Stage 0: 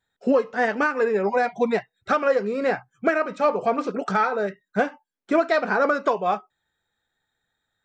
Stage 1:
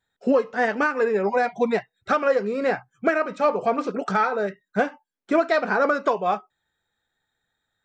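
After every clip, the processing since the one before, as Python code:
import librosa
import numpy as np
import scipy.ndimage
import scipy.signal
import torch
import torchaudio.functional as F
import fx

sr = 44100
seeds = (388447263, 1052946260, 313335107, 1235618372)

y = x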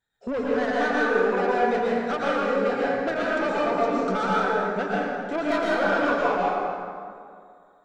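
y = 10.0 ** (-19.0 / 20.0) * np.tanh(x / 10.0 ** (-19.0 / 20.0))
y = fx.rev_plate(y, sr, seeds[0], rt60_s=2.3, hf_ratio=0.55, predelay_ms=100, drr_db=-6.5)
y = y * 10.0 ** (-5.0 / 20.0)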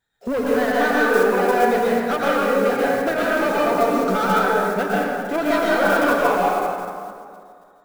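y = fx.block_float(x, sr, bits=5)
y = y * 10.0 ** (5.0 / 20.0)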